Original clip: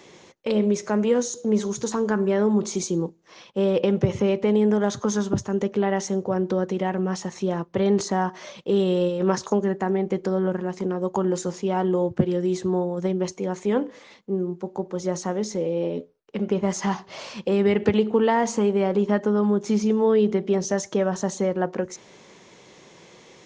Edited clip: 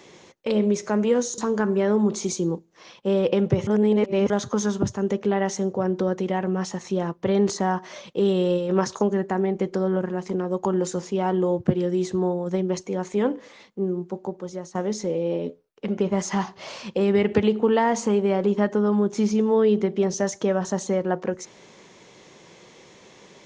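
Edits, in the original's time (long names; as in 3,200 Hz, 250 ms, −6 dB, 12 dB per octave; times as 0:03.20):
0:01.38–0:01.89: remove
0:04.18–0:04.81: reverse
0:14.65–0:15.26: fade out, to −14.5 dB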